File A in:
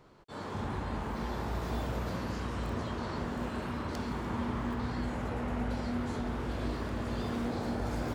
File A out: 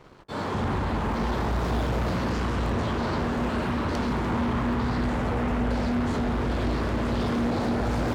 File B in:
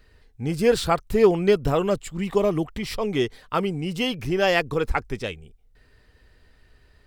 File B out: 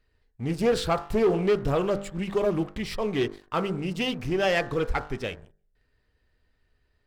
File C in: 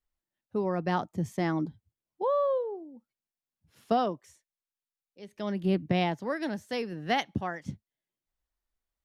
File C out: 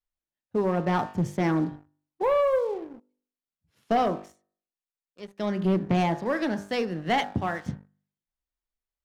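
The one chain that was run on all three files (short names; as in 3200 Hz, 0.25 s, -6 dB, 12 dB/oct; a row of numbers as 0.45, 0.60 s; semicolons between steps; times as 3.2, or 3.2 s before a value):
high shelf 6300 Hz -5.5 dB; de-hum 49.8 Hz, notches 38; sample leveller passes 2; Doppler distortion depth 0.17 ms; match loudness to -27 LUFS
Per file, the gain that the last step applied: +4.0, -9.0, -1.0 dB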